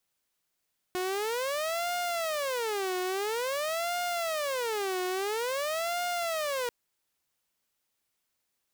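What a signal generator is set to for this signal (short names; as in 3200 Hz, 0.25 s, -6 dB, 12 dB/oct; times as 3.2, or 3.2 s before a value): siren wail 365–708 Hz 0.49/s saw -26.5 dBFS 5.74 s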